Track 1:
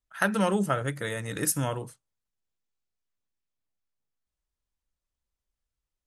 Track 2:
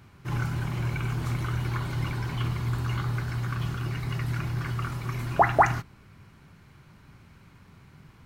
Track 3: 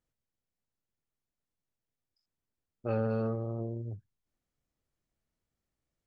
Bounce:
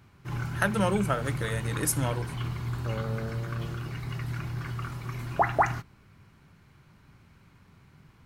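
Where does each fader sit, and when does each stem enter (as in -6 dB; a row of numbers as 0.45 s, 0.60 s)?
-1.0 dB, -4.0 dB, -5.5 dB; 0.40 s, 0.00 s, 0.00 s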